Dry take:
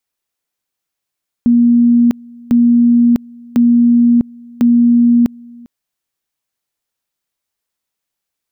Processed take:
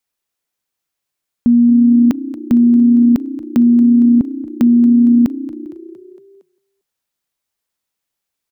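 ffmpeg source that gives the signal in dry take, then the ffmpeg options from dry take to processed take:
-f lavfi -i "aevalsrc='pow(10,(-6-26.5*gte(mod(t,1.05),0.65))/20)*sin(2*PI*238*t)':duration=4.2:sample_rate=44100"
-filter_complex "[0:a]asplit=6[link_01][link_02][link_03][link_04][link_05][link_06];[link_02]adelay=230,afreqshift=31,volume=-16.5dB[link_07];[link_03]adelay=460,afreqshift=62,volume=-21.4dB[link_08];[link_04]adelay=690,afreqshift=93,volume=-26.3dB[link_09];[link_05]adelay=920,afreqshift=124,volume=-31.1dB[link_10];[link_06]adelay=1150,afreqshift=155,volume=-36dB[link_11];[link_01][link_07][link_08][link_09][link_10][link_11]amix=inputs=6:normalize=0"

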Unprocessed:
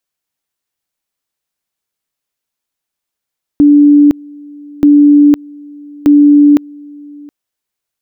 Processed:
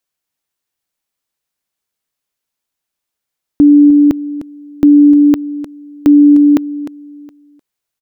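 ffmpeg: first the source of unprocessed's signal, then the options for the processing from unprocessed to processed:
-f lavfi -i "aevalsrc='pow(10,(-2-26.5*gte(mod(t,1.23),0.51))/20)*sin(2*PI*291*t)':duration=3.69:sample_rate=44100"
-af "aecho=1:1:304:0.2"

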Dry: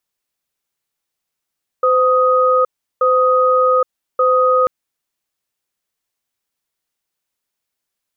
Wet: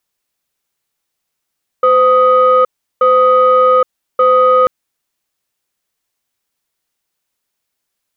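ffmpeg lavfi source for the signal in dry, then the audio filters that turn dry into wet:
-f lavfi -i "aevalsrc='0.224*(sin(2*PI*512*t)+sin(2*PI*1250*t))*clip(min(mod(t,1.18),0.82-mod(t,1.18))/0.005,0,1)':duration=2.84:sample_rate=44100"
-af "acontrast=23"

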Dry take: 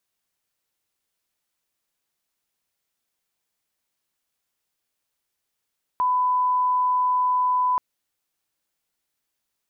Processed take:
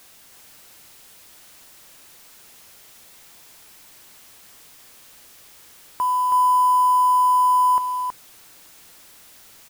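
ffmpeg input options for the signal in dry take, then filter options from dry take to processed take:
-f lavfi -i "sine=frequency=1000:duration=1.78:sample_rate=44100,volume=0.06dB"
-filter_complex "[0:a]aeval=exprs='val(0)+0.5*0.00631*sgn(val(0))':channel_layout=same,acrusher=bits=4:mode=log:mix=0:aa=0.000001,asplit=2[link_01][link_02];[link_02]aecho=0:1:322:0.596[link_03];[link_01][link_03]amix=inputs=2:normalize=0"

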